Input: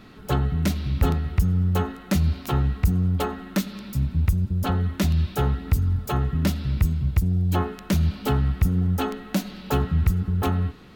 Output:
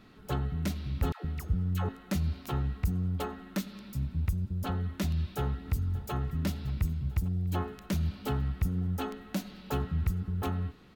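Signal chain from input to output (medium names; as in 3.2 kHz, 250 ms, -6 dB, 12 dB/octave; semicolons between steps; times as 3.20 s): 1.12–1.89 s: phase dispersion lows, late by 123 ms, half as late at 600 Hz; 5.07–6.12 s: echo throw 580 ms, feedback 70%, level -17.5 dB; trim -9 dB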